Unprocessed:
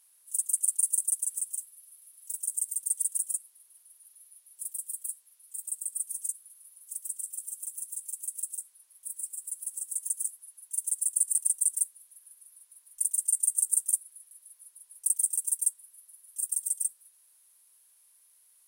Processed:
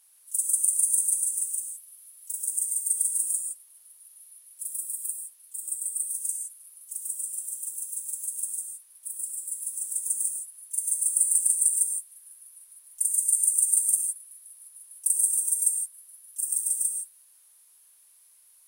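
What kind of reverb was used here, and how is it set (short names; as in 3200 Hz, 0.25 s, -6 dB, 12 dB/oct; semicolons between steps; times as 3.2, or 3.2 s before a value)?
non-linear reverb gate 0.19 s flat, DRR 1.5 dB; gain +2 dB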